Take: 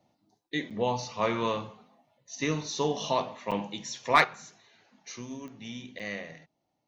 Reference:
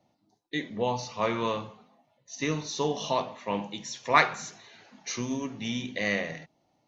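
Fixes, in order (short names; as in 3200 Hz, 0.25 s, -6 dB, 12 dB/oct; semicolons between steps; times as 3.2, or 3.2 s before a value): clip repair -9.5 dBFS; de-click; interpolate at 0.7/3.51/5.99, 6.7 ms; gain correction +8.5 dB, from 4.24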